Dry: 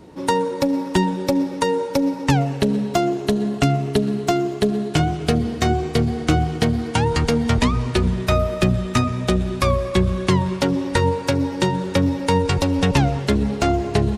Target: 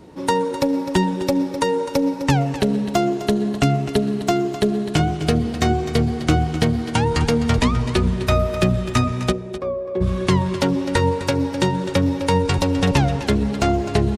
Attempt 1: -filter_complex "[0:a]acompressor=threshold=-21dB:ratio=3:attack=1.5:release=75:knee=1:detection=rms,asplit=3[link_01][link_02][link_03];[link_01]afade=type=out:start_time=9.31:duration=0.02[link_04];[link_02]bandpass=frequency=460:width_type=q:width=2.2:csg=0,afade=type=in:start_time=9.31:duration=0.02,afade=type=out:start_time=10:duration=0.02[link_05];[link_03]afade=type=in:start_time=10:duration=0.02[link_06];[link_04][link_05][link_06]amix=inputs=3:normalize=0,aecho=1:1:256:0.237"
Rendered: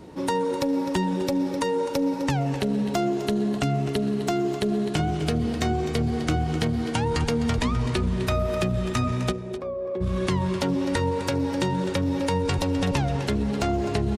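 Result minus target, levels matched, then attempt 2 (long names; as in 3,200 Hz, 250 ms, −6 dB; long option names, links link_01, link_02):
downward compressor: peak gain reduction +9 dB
-filter_complex "[0:a]asplit=3[link_01][link_02][link_03];[link_01]afade=type=out:start_time=9.31:duration=0.02[link_04];[link_02]bandpass=frequency=460:width_type=q:width=2.2:csg=0,afade=type=in:start_time=9.31:duration=0.02,afade=type=out:start_time=10:duration=0.02[link_05];[link_03]afade=type=in:start_time=10:duration=0.02[link_06];[link_04][link_05][link_06]amix=inputs=3:normalize=0,aecho=1:1:256:0.237"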